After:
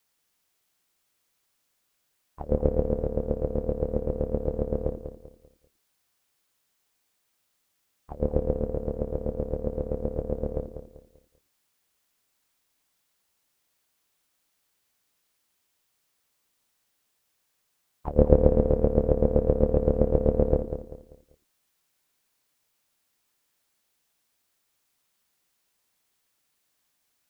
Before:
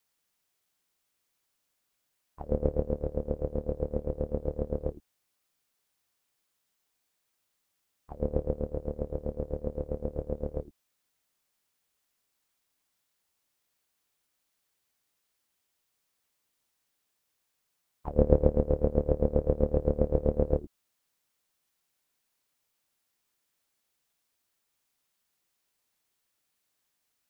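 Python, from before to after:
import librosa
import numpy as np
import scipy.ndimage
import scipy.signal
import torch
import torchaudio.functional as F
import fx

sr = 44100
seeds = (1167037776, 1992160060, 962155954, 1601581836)

y = fx.echo_feedback(x, sr, ms=195, feedback_pct=33, wet_db=-9.5)
y = y * 10.0 ** (4.0 / 20.0)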